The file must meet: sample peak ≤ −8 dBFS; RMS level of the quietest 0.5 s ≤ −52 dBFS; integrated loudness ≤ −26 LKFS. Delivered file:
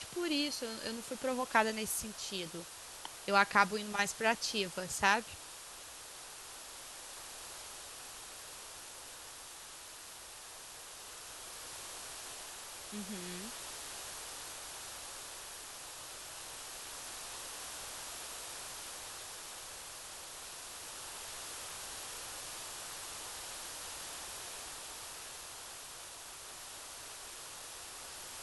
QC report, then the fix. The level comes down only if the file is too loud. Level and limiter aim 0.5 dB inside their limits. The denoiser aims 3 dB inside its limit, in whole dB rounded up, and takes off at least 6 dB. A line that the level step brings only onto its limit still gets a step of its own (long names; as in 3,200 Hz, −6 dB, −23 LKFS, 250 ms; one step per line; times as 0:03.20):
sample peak −11.5 dBFS: in spec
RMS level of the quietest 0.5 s −50 dBFS: out of spec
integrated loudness −39.5 LKFS: in spec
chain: broadband denoise 6 dB, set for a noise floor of −50 dBFS